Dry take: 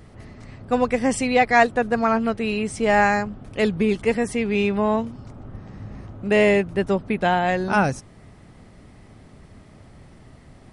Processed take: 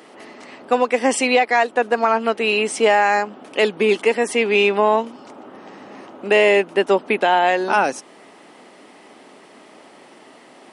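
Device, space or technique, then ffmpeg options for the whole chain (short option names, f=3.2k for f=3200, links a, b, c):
laptop speaker: -af "highpass=f=290:w=0.5412,highpass=f=290:w=1.3066,equalizer=f=900:t=o:w=0.41:g=4,equalizer=f=2.9k:t=o:w=0.43:g=5,alimiter=limit=-13dB:level=0:latency=1:release=309,volume=7.5dB"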